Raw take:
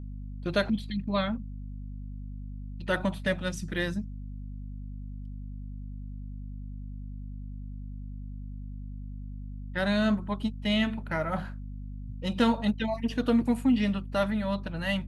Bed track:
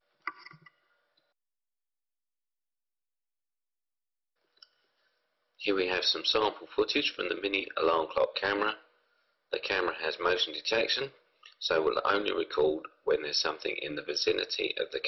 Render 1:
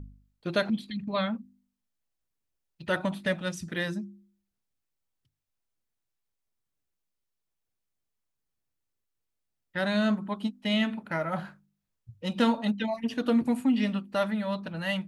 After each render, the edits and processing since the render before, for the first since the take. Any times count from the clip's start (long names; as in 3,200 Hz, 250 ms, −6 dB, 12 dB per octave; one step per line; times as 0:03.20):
hum removal 50 Hz, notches 7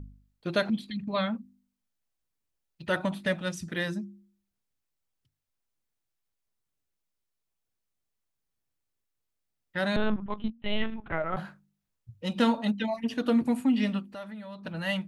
0:09.96–0:11.37: linear-prediction vocoder at 8 kHz pitch kept
0:14.11–0:14.65: downward compressor 2 to 1, threshold −48 dBFS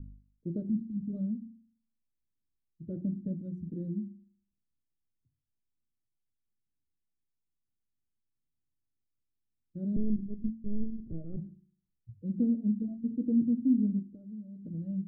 inverse Chebyshev low-pass filter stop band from 870 Hz, stop band 50 dB
hum removal 45.09 Hz, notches 8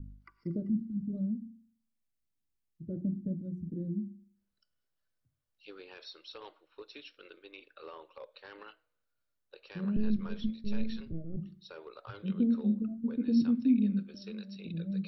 mix in bed track −21 dB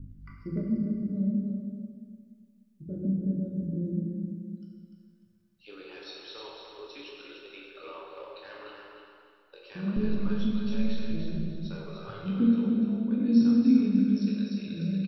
on a send: repeating echo 297 ms, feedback 29%, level −6 dB
on the sum: dense smooth reverb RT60 1.8 s, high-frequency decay 0.8×, DRR −3 dB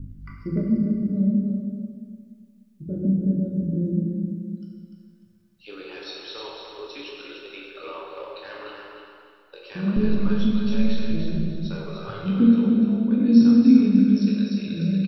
level +7 dB